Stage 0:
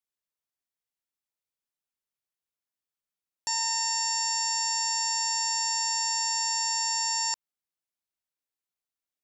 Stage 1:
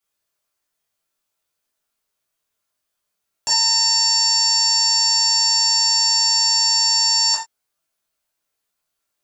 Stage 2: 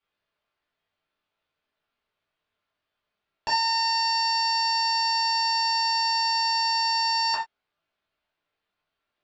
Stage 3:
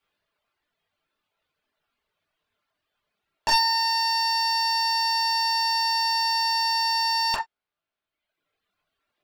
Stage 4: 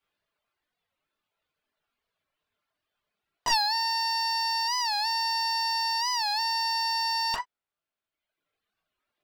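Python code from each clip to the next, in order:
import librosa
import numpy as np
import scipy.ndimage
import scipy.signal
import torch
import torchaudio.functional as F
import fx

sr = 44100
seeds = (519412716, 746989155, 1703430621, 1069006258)

y1 = fx.doubler(x, sr, ms=20.0, db=-6.5)
y1 = fx.rev_gated(y1, sr, seeds[0], gate_ms=110, shape='falling', drr_db=-6.5)
y1 = y1 * 10.0 ** (6.0 / 20.0)
y2 = scipy.signal.sosfilt(scipy.signal.butter(4, 3600.0, 'lowpass', fs=sr, output='sos'), y1)
y2 = y2 * 10.0 ** (2.0 / 20.0)
y3 = np.minimum(y2, 2.0 * 10.0 ** (-23.0 / 20.0) - y2)
y3 = fx.dereverb_blind(y3, sr, rt60_s=1.2)
y3 = y3 * 10.0 ** (5.5 / 20.0)
y4 = fx.record_warp(y3, sr, rpm=45.0, depth_cents=160.0)
y4 = y4 * 10.0 ** (-4.0 / 20.0)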